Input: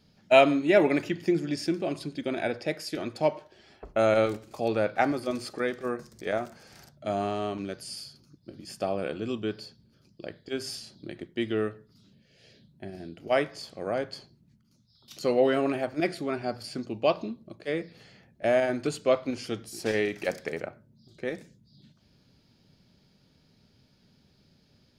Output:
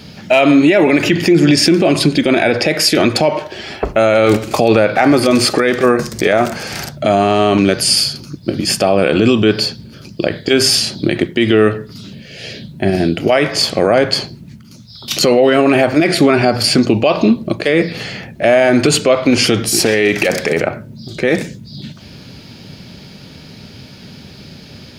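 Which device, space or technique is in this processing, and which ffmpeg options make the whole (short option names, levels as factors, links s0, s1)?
mastering chain: -af "highpass=55,equalizer=f=2500:t=o:w=0.85:g=4,acompressor=threshold=0.0316:ratio=2,asoftclip=type=hard:threshold=0.15,alimiter=level_in=25.1:limit=0.891:release=50:level=0:latency=1,volume=0.891"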